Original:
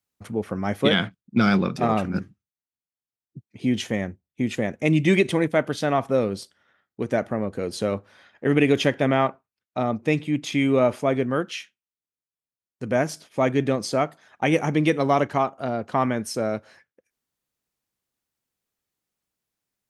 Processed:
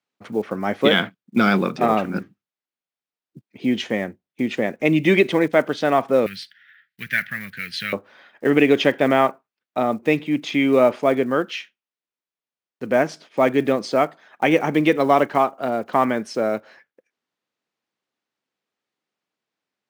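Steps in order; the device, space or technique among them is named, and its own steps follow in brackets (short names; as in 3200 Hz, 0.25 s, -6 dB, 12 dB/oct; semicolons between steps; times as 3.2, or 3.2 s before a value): early digital voice recorder (BPF 230–4000 Hz; block floating point 7-bit); 6.26–7.93 EQ curve 160 Hz 0 dB, 330 Hz -25 dB, 560 Hz -28 dB, 1100 Hz -16 dB, 1700 Hz +13 dB, 4200 Hz +7 dB, 7200 Hz -2 dB, 12000 Hz +11 dB; gain +4.5 dB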